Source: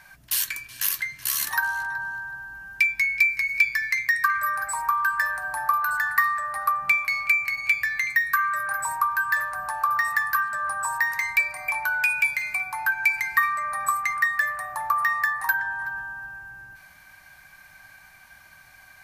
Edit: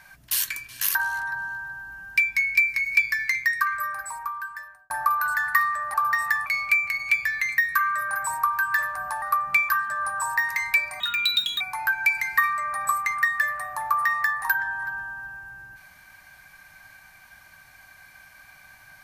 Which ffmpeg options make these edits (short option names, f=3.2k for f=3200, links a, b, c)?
-filter_complex "[0:a]asplit=9[a][b][c][d][e][f][g][h][i];[a]atrim=end=0.952[j];[b]atrim=start=1.578:end=5.53,asetpts=PTS-STARTPTS,afade=t=out:st=2.372:d=1.58[k];[c]atrim=start=5.53:end=6.572,asetpts=PTS-STARTPTS,afade=t=in:d=0.004:c=hsin[l];[d]atrim=start=9.798:end=10.322[m];[e]atrim=start=7.038:end=9.802[n];[f]atrim=start=6.568:end=7.042[o];[g]atrim=start=10.318:end=11.634[p];[h]atrim=start=11.63:end=12.6,asetpts=PTS-STARTPTS,asetrate=70560,aresample=44100[q];[i]atrim=start=12.596[r];[k][l]concat=n=2:v=0:a=1[s];[j][s]acrossfade=d=0.004:c1=hsin:c2=hsin[t];[t][m]acrossfade=d=0.004:c1=hsin:c2=hsin[u];[u][n]acrossfade=d=0.004:c1=hsin:c2=hsin[v];[v][o]acrossfade=d=0.004:c1=hsin:c2=hsin[w];[w][p]acrossfade=d=0.004:c1=hsin:c2=hsin[x];[x][q]acrossfade=d=0.004:c1=hsin:c2=hsin[y];[y][r]acrossfade=d=0.004:c1=hsin:c2=hsin"